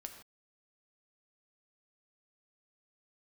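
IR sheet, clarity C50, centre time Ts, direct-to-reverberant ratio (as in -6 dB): 7.5 dB, 19 ms, 4.5 dB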